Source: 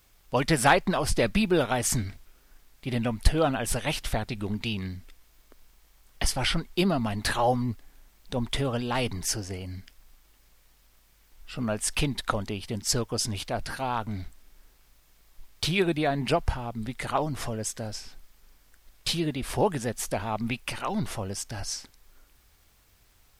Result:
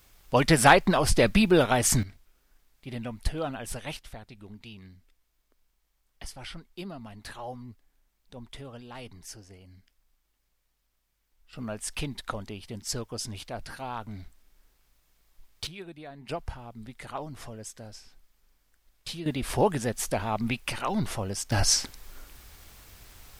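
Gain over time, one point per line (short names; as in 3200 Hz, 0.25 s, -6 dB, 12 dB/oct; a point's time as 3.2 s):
+3 dB
from 2.03 s -8 dB
from 3.97 s -15 dB
from 11.53 s -6.5 dB
from 15.67 s -18 dB
from 16.29 s -9.5 dB
from 19.26 s +1 dB
from 21.52 s +11 dB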